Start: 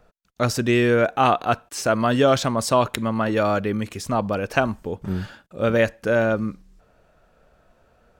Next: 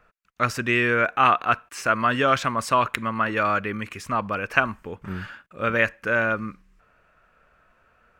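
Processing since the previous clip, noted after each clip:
flat-topped bell 1,700 Hz +11 dB
level −6.5 dB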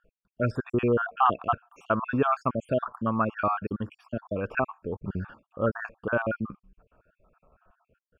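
time-frequency cells dropped at random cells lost 60%
moving average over 22 samples
level +3 dB

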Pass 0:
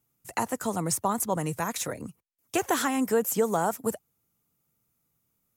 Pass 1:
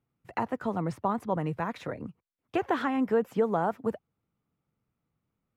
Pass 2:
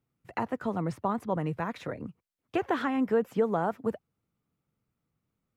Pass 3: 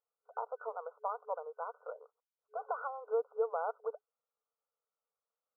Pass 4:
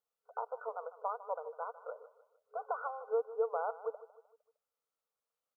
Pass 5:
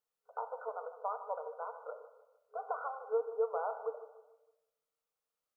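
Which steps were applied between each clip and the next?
high-frequency loss of the air 380 metres
parametric band 860 Hz −2 dB
brick-wall band-pass 430–1,500 Hz; level −6 dB
repeating echo 153 ms, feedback 43%, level −16 dB
rectangular room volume 380 cubic metres, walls mixed, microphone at 0.5 metres; level −1 dB

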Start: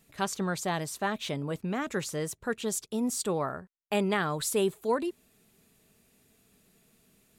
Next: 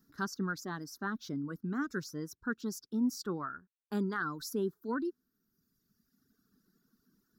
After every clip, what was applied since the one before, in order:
reverb reduction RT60 1.6 s
drawn EQ curve 120 Hz 0 dB, 290 Hz +11 dB, 620 Hz −12 dB, 1,500 Hz +10 dB, 2,400 Hz −20 dB, 5,400 Hz +7 dB, 8,400 Hz −14 dB, 15,000 Hz +6 dB
level −8 dB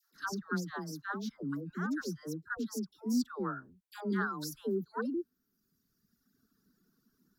all-pass dispersion lows, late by 145 ms, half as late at 700 Hz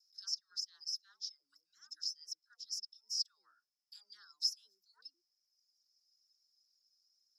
four-pole ladder band-pass 5,300 Hz, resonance 90%
level +7 dB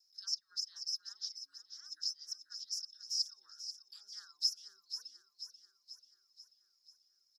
repeating echo 487 ms, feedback 56%, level −10 dB
level +1.5 dB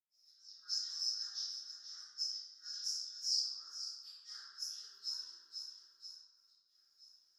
gate pattern "x.xxxxxxxxx." 87 BPM −24 dB
convolution reverb RT60 1.4 s, pre-delay 95 ms
level +10 dB

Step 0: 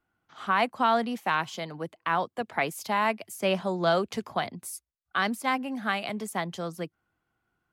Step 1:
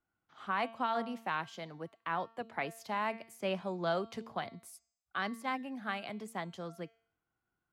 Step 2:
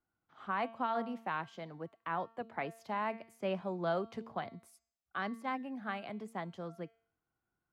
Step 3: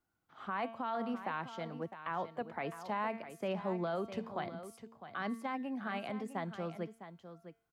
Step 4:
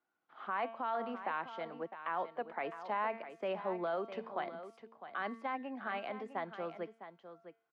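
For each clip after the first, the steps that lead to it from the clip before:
high-shelf EQ 6,000 Hz −7.5 dB; hum removal 226.8 Hz, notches 38; level −8.5 dB
high-shelf EQ 2,800 Hz −11 dB
brickwall limiter −30.5 dBFS, peak gain reduction 8.5 dB; on a send: single-tap delay 656 ms −11.5 dB; on the sum: level +3 dB
band-pass filter 360–3,000 Hz; level +1.5 dB

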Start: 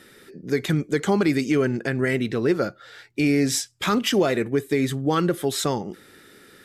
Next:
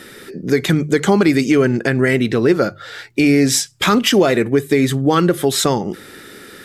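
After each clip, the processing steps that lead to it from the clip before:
mains-hum notches 50/100/150 Hz
in parallel at +2.5 dB: downward compressor, threshold −29 dBFS, peak gain reduction 13 dB
on the sum: level +4.5 dB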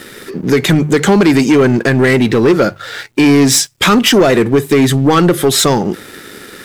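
leveller curve on the samples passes 2
bit-depth reduction 10 bits, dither none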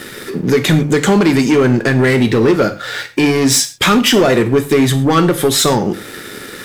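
in parallel at +2 dB: downward compressor, threshold −19 dBFS, peak gain reduction 12 dB
on the sum: reverb whose tail is shaped and stops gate 150 ms falling, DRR 7.5 dB
level −5 dB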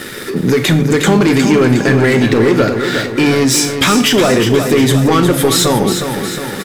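brickwall limiter −8.5 dBFS, peak gain reduction 7 dB
on a send: repeating echo 361 ms, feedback 55%, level −7.5 dB
on the sum: level +3.5 dB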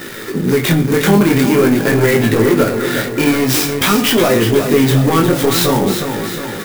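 chorus effect 0.47 Hz, delay 17.5 ms, depth 7.4 ms
converter with an unsteady clock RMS 0.033 ms
level +1.5 dB

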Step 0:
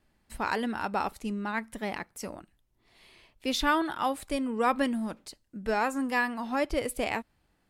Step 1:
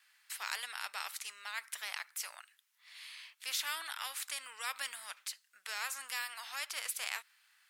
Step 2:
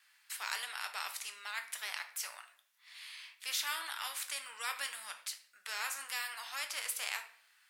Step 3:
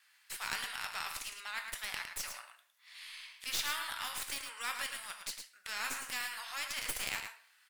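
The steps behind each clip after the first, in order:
high-pass filter 1,400 Hz 24 dB per octave; every bin compressed towards the loudest bin 2 to 1; level −2 dB
rectangular room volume 74 cubic metres, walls mixed, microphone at 0.39 metres
stylus tracing distortion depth 0.045 ms; single-tap delay 109 ms −7 dB

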